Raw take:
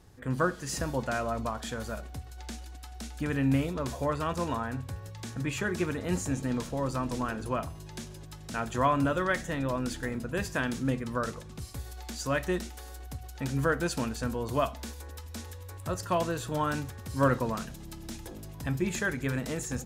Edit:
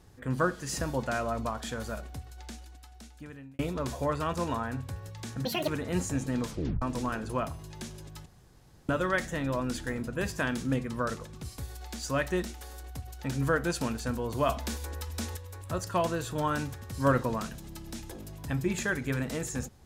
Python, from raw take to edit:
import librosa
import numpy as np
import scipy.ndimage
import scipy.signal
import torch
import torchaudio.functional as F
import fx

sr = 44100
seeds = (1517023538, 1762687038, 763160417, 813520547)

y = fx.edit(x, sr, fx.fade_out_span(start_s=2.05, length_s=1.54),
    fx.speed_span(start_s=5.45, length_s=0.39, speed=1.71),
    fx.tape_stop(start_s=6.65, length_s=0.33),
    fx.room_tone_fill(start_s=8.42, length_s=0.63),
    fx.clip_gain(start_s=14.65, length_s=0.88, db=5.5), tone=tone)